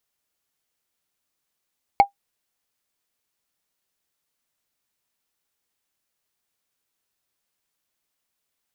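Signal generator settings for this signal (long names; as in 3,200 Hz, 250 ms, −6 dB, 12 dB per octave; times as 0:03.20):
struck wood, lowest mode 801 Hz, decay 0.11 s, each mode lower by 10 dB, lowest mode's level −4.5 dB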